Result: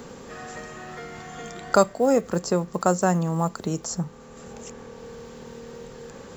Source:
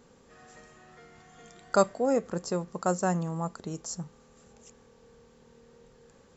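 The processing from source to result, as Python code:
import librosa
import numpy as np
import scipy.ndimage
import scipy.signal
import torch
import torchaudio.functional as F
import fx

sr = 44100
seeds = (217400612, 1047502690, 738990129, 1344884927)

y = fx.block_float(x, sr, bits=7)
y = fx.band_squash(y, sr, depth_pct=40)
y = y * 10.0 ** (8.0 / 20.0)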